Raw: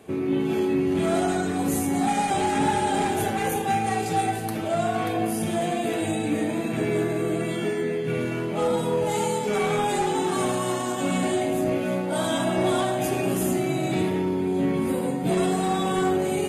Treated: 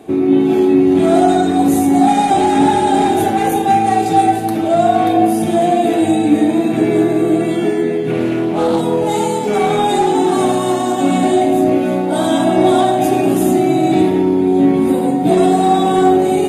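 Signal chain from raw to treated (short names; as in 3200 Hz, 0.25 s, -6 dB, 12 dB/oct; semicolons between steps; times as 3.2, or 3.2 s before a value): small resonant body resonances 310/720/3700 Hz, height 11 dB, ringing for 25 ms; 8.1–8.81 Doppler distortion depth 0.21 ms; gain +4.5 dB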